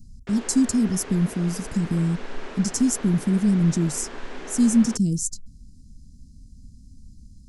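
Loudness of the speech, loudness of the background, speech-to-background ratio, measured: −23.0 LKFS, −39.0 LKFS, 16.0 dB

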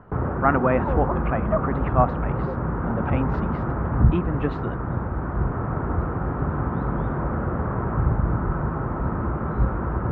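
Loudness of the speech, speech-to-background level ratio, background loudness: −26.5 LKFS, −1.0 dB, −25.5 LKFS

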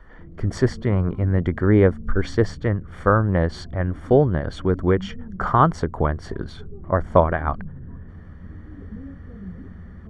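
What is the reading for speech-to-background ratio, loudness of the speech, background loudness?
18.0 dB, −21.5 LKFS, −39.5 LKFS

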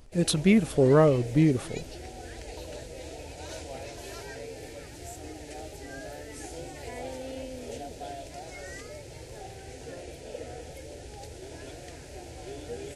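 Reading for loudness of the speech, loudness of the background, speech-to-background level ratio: −23.0 LKFS, −41.5 LKFS, 18.5 dB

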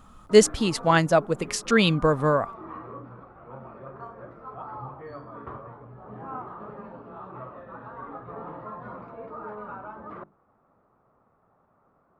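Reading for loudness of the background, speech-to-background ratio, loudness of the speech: −41.0 LKFS, 19.5 dB, −21.5 LKFS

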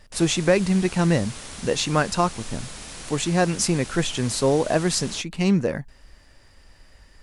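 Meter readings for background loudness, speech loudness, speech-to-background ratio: −37.0 LKFS, −22.5 LKFS, 14.5 dB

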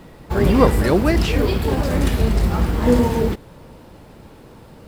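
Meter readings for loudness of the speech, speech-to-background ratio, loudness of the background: −19.5 LKFS, 0.0 dB, −19.5 LKFS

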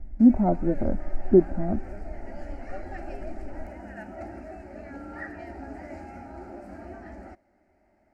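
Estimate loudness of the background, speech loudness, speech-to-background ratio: −41.5 LKFS, −23.0 LKFS, 18.5 dB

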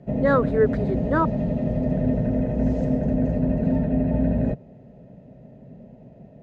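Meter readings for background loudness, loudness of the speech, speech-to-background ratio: −24.0 LKFS, −23.5 LKFS, 0.5 dB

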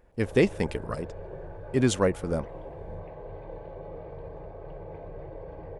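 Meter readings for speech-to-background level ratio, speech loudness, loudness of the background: 15.0 dB, −27.5 LKFS, −42.5 LKFS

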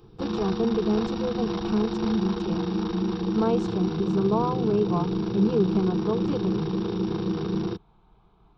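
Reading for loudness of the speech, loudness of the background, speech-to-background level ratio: −28.0 LKFS, −28.5 LKFS, 0.5 dB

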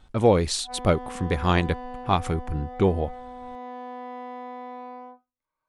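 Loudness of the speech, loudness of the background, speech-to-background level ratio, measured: −25.0 LKFS, −39.0 LKFS, 14.0 dB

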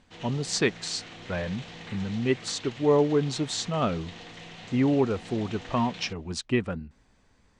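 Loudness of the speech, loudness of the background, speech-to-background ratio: −28.0 LKFS, −43.5 LKFS, 15.5 dB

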